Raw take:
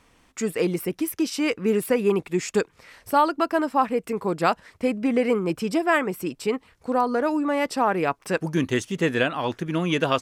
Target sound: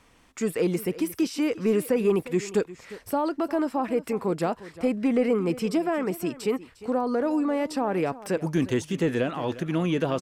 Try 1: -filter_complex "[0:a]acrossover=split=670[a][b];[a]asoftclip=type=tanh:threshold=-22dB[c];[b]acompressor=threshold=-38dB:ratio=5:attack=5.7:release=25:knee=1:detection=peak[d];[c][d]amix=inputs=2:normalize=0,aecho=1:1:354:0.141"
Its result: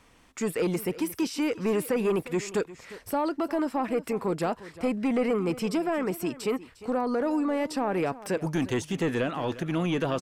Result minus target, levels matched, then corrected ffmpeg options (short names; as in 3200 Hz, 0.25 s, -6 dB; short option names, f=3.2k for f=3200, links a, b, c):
soft clip: distortion +13 dB
-filter_complex "[0:a]acrossover=split=670[a][b];[a]asoftclip=type=tanh:threshold=-12.5dB[c];[b]acompressor=threshold=-38dB:ratio=5:attack=5.7:release=25:knee=1:detection=peak[d];[c][d]amix=inputs=2:normalize=0,aecho=1:1:354:0.141"